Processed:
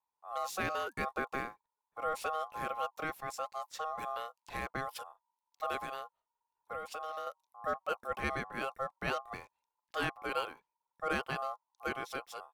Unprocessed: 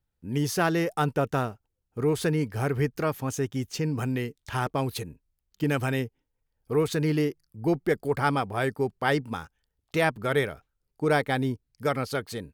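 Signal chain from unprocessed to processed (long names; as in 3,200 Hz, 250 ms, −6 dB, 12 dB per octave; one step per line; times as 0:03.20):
0:05.80–0:07.27: downward compressor 12 to 1, threshold −27 dBFS, peak gain reduction 9.5 dB
ring modulation 940 Hz
level −8 dB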